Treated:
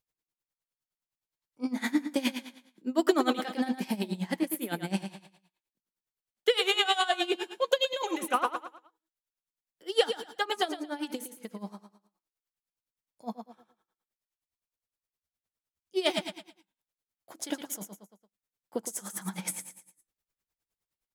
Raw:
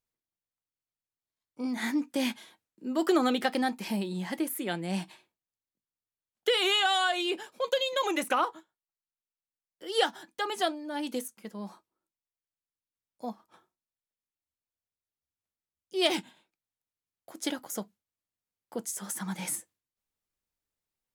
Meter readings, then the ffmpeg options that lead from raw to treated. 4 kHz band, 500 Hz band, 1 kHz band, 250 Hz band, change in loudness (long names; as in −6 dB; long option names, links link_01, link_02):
−1.0 dB, +0.5 dB, −1.0 dB, 0.0 dB, −0.5 dB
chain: -af "aecho=1:1:114|228|342|456:0.376|0.132|0.046|0.0161,aeval=exprs='val(0)*pow(10,-18*(0.5-0.5*cos(2*PI*9.7*n/s))/20)':channel_layout=same,volume=4dB"